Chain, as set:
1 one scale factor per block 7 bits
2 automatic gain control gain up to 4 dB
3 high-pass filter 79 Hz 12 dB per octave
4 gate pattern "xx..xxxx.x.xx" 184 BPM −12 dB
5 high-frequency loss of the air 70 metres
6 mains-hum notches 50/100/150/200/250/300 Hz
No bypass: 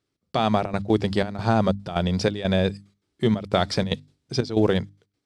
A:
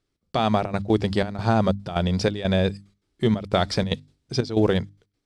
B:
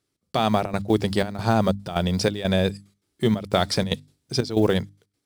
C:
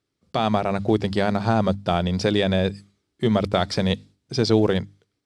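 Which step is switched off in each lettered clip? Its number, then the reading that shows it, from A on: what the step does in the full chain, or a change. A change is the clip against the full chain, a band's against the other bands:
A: 3, change in crest factor −2.0 dB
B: 5, 8 kHz band +5.0 dB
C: 4, change in integrated loudness +1.5 LU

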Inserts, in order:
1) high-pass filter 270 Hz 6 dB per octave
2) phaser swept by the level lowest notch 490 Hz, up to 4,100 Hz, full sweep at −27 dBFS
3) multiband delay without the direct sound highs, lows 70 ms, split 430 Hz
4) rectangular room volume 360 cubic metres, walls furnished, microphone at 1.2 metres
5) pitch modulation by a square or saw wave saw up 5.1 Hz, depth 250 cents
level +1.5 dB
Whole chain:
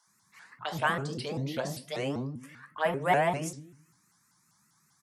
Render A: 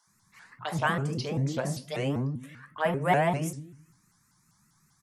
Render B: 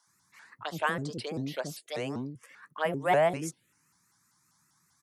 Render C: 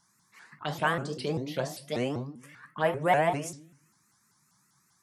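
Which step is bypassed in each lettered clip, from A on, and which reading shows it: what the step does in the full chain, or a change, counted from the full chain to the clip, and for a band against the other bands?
1, change in integrated loudness +2.0 LU
4, change in momentary loudness spread +2 LU
3, change in momentary loudness spread +3 LU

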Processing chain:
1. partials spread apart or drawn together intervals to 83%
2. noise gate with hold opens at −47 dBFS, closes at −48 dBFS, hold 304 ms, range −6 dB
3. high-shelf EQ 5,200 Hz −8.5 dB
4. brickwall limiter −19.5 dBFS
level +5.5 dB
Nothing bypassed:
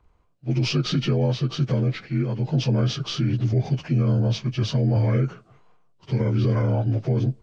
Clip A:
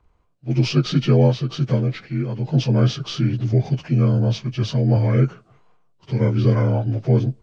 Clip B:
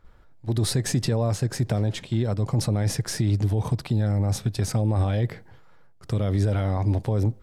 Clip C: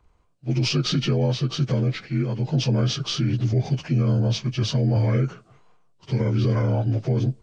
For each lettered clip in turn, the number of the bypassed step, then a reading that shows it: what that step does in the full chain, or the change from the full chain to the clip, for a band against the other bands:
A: 4, average gain reduction 1.5 dB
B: 1, 1 kHz band +3.5 dB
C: 3, 4 kHz band +2.5 dB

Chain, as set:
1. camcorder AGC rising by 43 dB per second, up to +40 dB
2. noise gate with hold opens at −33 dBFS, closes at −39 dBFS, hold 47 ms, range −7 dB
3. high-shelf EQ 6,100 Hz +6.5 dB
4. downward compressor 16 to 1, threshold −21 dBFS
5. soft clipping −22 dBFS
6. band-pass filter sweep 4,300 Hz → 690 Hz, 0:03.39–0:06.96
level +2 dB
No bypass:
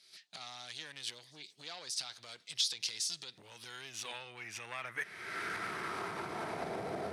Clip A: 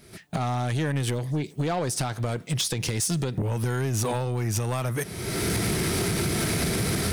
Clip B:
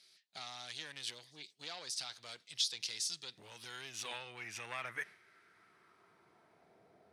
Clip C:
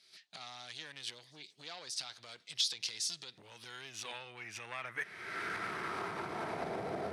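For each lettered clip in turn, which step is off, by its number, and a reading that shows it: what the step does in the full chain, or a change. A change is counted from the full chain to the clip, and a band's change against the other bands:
6, 125 Hz band +18.5 dB
1, change in crest factor +1.5 dB
3, 8 kHz band −2.0 dB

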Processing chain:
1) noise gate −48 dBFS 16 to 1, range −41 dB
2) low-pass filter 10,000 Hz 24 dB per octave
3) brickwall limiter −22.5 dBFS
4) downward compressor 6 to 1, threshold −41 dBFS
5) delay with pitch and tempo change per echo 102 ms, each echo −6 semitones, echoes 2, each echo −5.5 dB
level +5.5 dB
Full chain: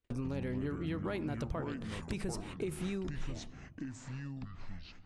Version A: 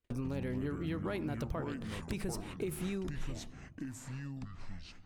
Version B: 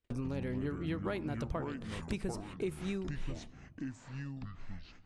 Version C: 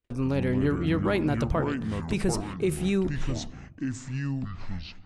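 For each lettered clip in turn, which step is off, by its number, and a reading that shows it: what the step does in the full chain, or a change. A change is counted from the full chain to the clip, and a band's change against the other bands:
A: 2, 8 kHz band +2.0 dB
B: 3, 8 kHz band −4.0 dB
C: 4, average gain reduction 9.0 dB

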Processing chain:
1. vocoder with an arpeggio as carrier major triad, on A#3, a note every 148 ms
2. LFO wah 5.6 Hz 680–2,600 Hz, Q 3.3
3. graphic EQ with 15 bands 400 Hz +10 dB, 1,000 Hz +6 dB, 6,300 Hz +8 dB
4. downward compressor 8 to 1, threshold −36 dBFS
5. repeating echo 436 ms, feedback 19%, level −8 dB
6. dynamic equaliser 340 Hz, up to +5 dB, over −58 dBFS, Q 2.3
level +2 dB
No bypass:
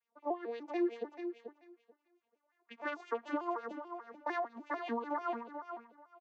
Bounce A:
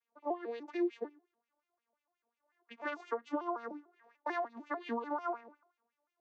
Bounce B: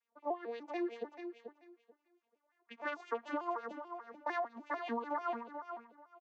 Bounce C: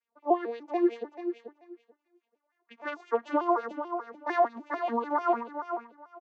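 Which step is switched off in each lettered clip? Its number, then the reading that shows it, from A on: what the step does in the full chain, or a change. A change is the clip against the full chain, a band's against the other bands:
5, change in momentary loudness spread −1 LU
6, change in momentary loudness spread −1 LU
4, average gain reduction 5.5 dB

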